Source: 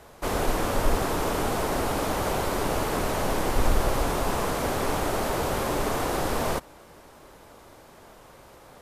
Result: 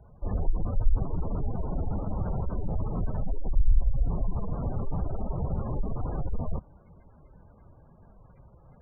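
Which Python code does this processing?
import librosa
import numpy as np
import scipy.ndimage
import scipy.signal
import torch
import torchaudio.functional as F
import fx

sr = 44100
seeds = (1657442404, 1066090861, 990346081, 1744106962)

p1 = fx.spec_gate(x, sr, threshold_db=-10, keep='strong')
p2 = fx.band_shelf(p1, sr, hz=650.0, db=-15.5, octaves=2.9)
p3 = np.clip(p2, -10.0 ** (-27.5 / 20.0), 10.0 ** (-27.5 / 20.0))
p4 = p2 + (p3 * librosa.db_to_amplitude(-9.5))
y = p4 * librosa.db_to_amplitude(2.5)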